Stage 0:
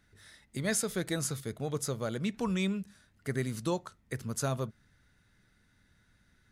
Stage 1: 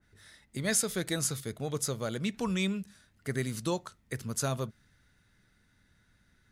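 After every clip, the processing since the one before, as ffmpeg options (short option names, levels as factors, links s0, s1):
-af "adynamicequalizer=threshold=0.00501:dfrequency=2000:dqfactor=0.7:tfrequency=2000:tqfactor=0.7:attack=5:release=100:ratio=0.375:range=2:mode=boostabove:tftype=highshelf"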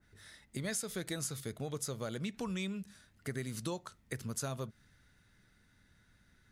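-af "acompressor=threshold=0.0141:ratio=3"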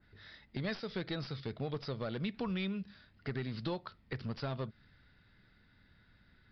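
-af "aeval=exprs='clip(val(0),-1,0.0178)':c=same,aresample=11025,aresample=44100,volume=1.26"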